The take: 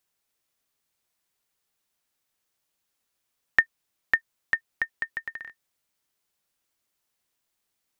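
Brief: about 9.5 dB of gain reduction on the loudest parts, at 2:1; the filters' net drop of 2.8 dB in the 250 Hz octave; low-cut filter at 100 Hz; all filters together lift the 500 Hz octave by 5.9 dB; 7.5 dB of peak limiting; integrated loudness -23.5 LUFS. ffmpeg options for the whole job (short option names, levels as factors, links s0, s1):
-af "highpass=100,equalizer=f=250:t=o:g=-7.5,equalizer=f=500:t=o:g=9,acompressor=threshold=0.02:ratio=2,volume=6.68,alimiter=limit=0.891:level=0:latency=1"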